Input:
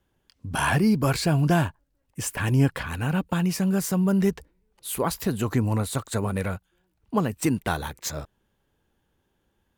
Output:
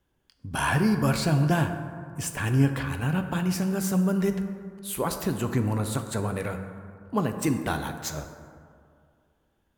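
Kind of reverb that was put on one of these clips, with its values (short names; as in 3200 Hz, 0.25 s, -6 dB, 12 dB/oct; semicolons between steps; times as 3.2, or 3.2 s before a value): plate-style reverb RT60 2.2 s, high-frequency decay 0.4×, DRR 6.5 dB; gain -2.5 dB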